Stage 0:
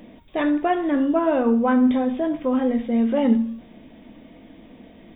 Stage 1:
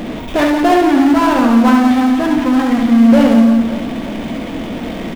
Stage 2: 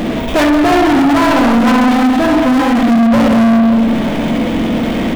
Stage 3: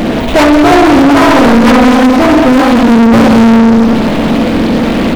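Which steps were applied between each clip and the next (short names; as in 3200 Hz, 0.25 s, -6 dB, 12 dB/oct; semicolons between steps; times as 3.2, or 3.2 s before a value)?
spectral gain 0.88–3.09, 320–770 Hz -10 dB; power-law curve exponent 0.5; reverse bouncing-ball echo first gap 70 ms, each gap 1.5×, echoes 5; gain +3 dB
spring tank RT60 1.8 s, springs 44/50 ms, chirp 35 ms, DRR 4 dB; soft clip -14.5 dBFS, distortion -7 dB; gain +7 dB
Doppler distortion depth 0.65 ms; gain +5.5 dB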